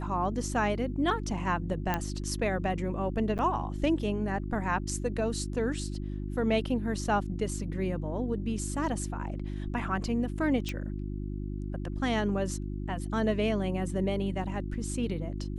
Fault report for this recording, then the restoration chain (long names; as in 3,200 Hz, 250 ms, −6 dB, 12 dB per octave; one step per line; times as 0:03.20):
mains hum 50 Hz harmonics 7 −35 dBFS
0:01.94: click −14 dBFS
0:03.38–0:03.39: drop-out 9 ms
0:10.69: click −20 dBFS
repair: click removal
hum removal 50 Hz, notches 7
repair the gap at 0:03.38, 9 ms